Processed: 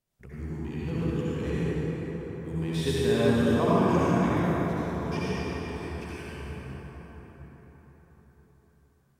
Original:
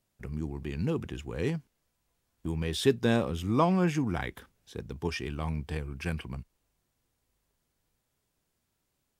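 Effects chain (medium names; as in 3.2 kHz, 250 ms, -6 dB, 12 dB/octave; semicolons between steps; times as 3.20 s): 5.32–6.32 s: amplifier tone stack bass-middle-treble 10-0-10; reverberation RT60 5.6 s, pre-delay 58 ms, DRR -10.5 dB; trim -7.5 dB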